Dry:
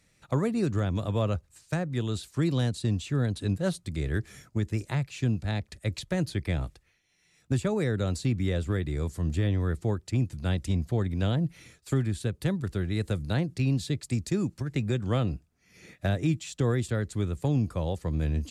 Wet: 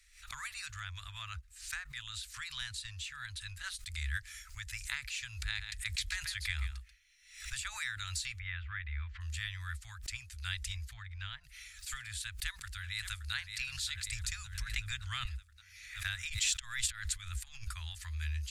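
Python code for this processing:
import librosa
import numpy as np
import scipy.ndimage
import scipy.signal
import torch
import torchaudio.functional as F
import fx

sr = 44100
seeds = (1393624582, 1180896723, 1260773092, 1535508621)

y = fx.high_shelf(x, sr, hz=2700.0, db=-5.0, at=(0.74, 3.78))
y = fx.echo_single(y, sr, ms=136, db=-9.5, at=(5.5, 7.59), fade=0.02)
y = fx.lowpass(y, sr, hz=2700.0, slope=24, at=(8.38, 9.2), fade=0.02)
y = fx.spacing_loss(y, sr, db_at_10k=22, at=(10.93, 11.44))
y = fx.echo_throw(y, sr, start_s=12.26, length_s=1.07, ms=570, feedback_pct=70, wet_db=-11.5)
y = fx.low_shelf(y, sr, hz=350.0, db=9.0, at=(14.08, 15.25))
y = fx.over_compress(y, sr, threshold_db=-33.0, ratio=-0.5, at=(16.28, 17.72), fade=0.02)
y = scipy.signal.sosfilt(scipy.signal.cheby2(4, 80, [190.0, 440.0], 'bandstop', fs=sr, output='sos'), y)
y = fx.low_shelf(y, sr, hz=110.0, db=6.0)
y = fx.pre_swell(y, sr, db_per_s=93.0)
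y = y * librosa.db_to_amplitude(2.5)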